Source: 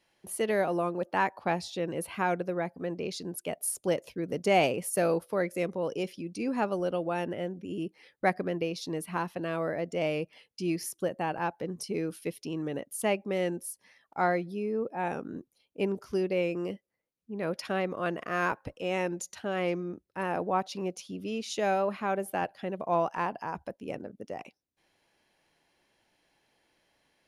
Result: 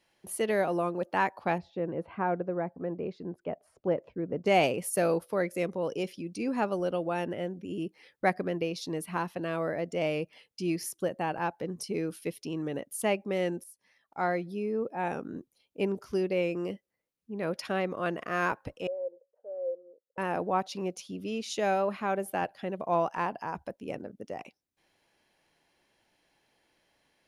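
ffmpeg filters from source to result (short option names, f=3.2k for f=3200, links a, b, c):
-filter_complex "[0:a]asettb=1/sr,asplit=3[a][b][c];[a]atrim=end=1.584[d];[b]atrim=start=1.58:end=4.46,asetpts=PTS-STARTPTS,afade=t=in:d=0.004:c=qsin,afade=t=out:st=2.876:d=0.004:c=qsin,lowpass=1.3k[e];[c]atrim=start=4.456[f];[d][e]acrossfade=d=0.004:c1=hsin:c2=qsin[g];[g][f]acrossfade=d=0.004:c1=qsin:c2=hsin,asettb=1/sr,asplit=3[h][i][j];[h]atrim=end=18.874[k];[i]atrim=start=18.87:end=20.18,asetpts=PTS-STARTPTS,afade=t=in:d=0.004:c=qsin,afade=t=out:st=1.306:d=0.004:c=qsin,asuperpass=centerf=520:order=4:qfactor=4.9[l];[j]atrim=start=20.176[m];[k][l]acrossfade=d=0.004:c1=hsin:c2=qsin[n];[n][m]acrossfade=d=0.004:c1=qsin:c2=hsin,asplit=2[o][p];[o]atrim=end=13.64,asetpts=PTS-STARTPTS,afade=t=out:st=13.636:d=0.004:c=hsin:silence=0.211349[q];[p]atrim=start=13.64,asetpts=PTS-STARTPTS,afade=t=in:d=0.92:silence=0.211349[r];[q][r]concat=n=2:v=0:a=1"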